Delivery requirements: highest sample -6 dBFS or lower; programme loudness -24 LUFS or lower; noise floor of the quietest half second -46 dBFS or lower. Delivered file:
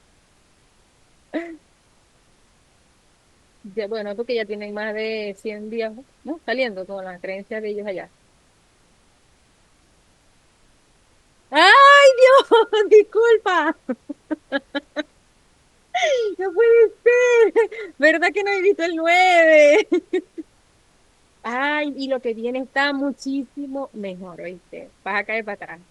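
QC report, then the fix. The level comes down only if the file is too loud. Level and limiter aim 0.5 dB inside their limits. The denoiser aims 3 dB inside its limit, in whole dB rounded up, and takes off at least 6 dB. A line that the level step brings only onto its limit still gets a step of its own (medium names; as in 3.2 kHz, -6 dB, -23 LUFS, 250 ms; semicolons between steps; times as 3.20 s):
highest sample -2.5 dBFS: fail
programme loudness -17.5 LUFS: fail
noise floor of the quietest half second -58 dBFS: pass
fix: trim -7 dB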